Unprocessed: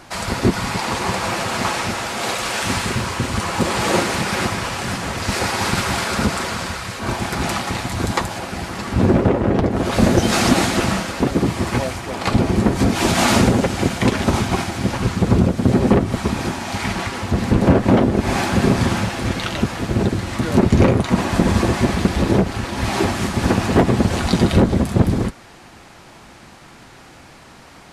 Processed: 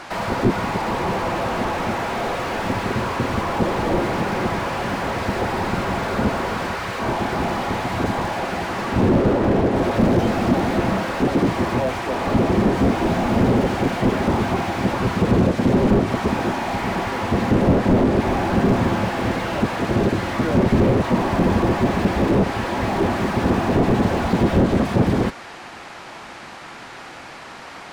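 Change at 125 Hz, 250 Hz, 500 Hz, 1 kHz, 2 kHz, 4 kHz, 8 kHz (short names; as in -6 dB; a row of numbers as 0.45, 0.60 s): -3.0, -1.0, +0.5, +0.5, -2.5, -7.0, -12.0 dB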